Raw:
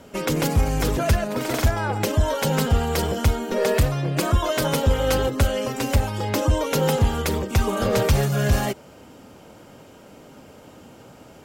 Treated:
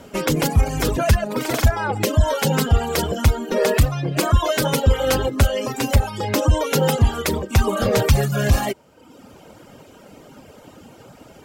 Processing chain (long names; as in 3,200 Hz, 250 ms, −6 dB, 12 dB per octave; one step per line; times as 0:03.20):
reverb reduction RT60 0.92 s
level +4 dB